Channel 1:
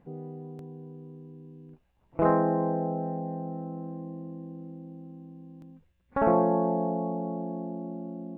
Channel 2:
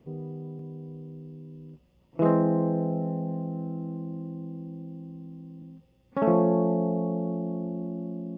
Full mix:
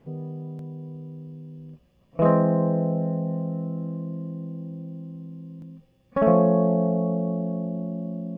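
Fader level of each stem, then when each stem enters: -0.5, +1.5 dB; 0.00, 0.00 s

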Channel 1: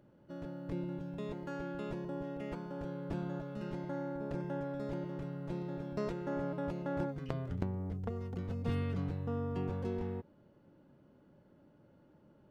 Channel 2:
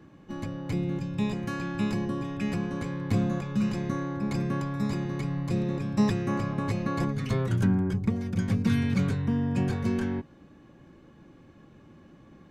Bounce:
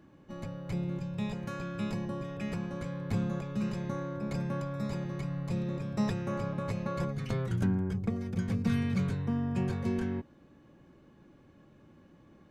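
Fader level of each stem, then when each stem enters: -2.5, -6.0 dB; 0.00, 0.00 s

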